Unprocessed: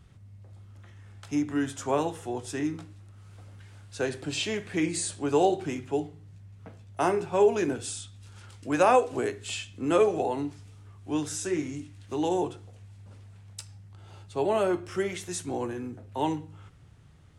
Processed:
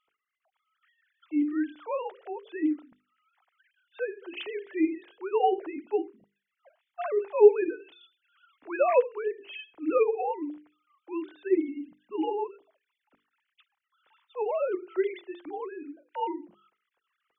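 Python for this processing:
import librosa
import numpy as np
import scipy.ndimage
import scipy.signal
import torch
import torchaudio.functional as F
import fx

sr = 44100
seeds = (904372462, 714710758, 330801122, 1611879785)

y = fx.sine_speech(x, sr)
y = fx.hum_notches(y, sr, base_hz=50, count=9)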